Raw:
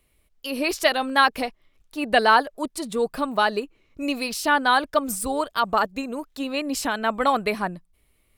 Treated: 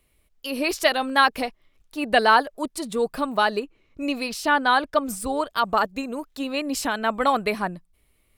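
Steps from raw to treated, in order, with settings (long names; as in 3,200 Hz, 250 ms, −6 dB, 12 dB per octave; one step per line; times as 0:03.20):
0:03.59–0:05.51: high-shelf EQ 6,700 Hz −6.5 dB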